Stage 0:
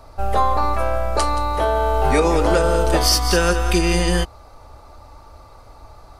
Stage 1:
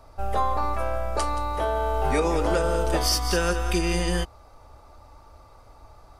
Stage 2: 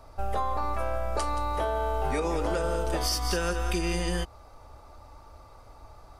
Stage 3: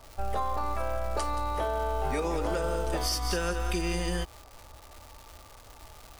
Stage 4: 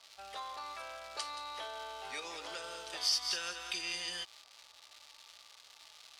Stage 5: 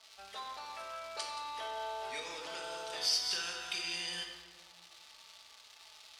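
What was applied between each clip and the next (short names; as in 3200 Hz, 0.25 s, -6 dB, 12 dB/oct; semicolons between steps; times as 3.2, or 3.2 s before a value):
notch 4200 Hz, Q 15; gain -6.5 dB
compressor, threshold -24 dBFS, peak gain reduction 6.5 dB
crackle 420/s -37 dBFS; gain -1.5 dB
band-pass 3900 Hz, Q 1.5; gain +3.5 dB
reverb RT60 1.5 s, pre-delay 5 ms, DRR 1.5 dB; gain -1.5 dB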